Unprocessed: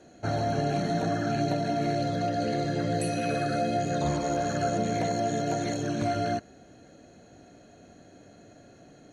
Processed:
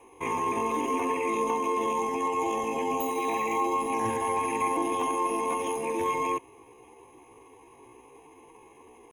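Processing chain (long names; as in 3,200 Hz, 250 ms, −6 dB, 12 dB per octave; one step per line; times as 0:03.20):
pitch shifter +7.5 semitones
phaser with its sweep stopped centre 910 Hz, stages 8
level +2.5 dB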